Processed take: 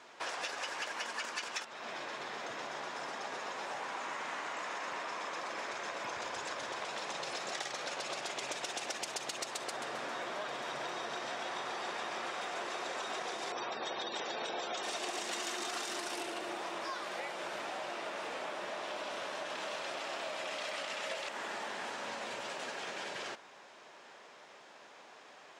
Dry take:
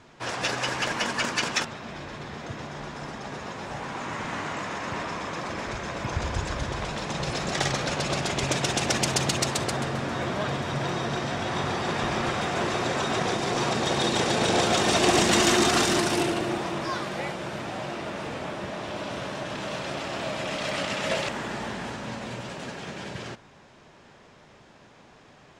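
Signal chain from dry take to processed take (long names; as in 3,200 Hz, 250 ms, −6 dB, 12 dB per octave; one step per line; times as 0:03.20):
0:13.52–0:14.83: gate on every frequency bin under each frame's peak −20 dB strong
high-pass filter 500 Hz 12 dB per octave
downward compressor 6 to 1, threshold −37 dBFS, peak gain reduction 17 dB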